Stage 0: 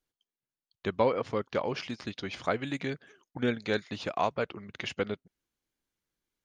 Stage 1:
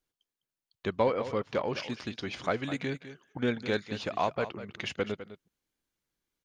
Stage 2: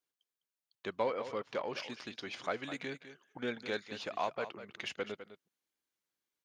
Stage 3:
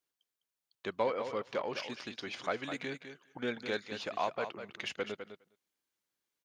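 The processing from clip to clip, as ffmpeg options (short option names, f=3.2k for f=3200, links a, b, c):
-filter_complex "[0:a]asplit=2[a][b];[b]asoftclip=type=tanh:threshold=-29.5dB,volume=-11dB[c];[a][c]amix=inputs=2:normalize=0,aecho=1:1:205:0.224,volume=-1.5dB"
-filter_complex "[0:a]highpass=f=420:p=1,asplit=2[a][b];[b]asoftclip=type=tanh:threshold=-32dB,volume=-12dB[c];[a][c]amix=inputs=2:normalize=0,volume=-5.5dB"
-af "aecho=1:1:205:0.0944,volume=1.5dB"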